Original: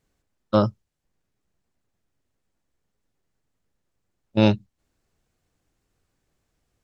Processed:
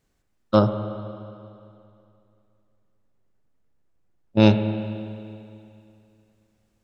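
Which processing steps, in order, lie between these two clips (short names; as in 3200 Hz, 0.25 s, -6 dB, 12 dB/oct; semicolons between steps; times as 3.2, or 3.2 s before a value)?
0.59–4.4 high shelf 2300 Hz -9 dB; reverb RT60 2.6 s, pre-delay 37 ms, DRR 8 dB; gain +1.5 dB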